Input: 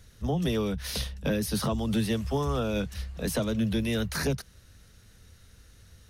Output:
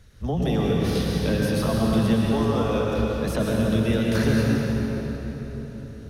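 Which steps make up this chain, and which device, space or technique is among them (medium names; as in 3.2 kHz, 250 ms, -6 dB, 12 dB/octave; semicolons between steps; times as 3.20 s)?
2.26–2.87 s: high-pass 290 Hz 24 dB/octave; swimming-pool hall (reverberation RT60 4.3 s, pre-delay 103 ms, DRR -3 dB; treble shelf 4 kHz -8 dB); trim +2 dB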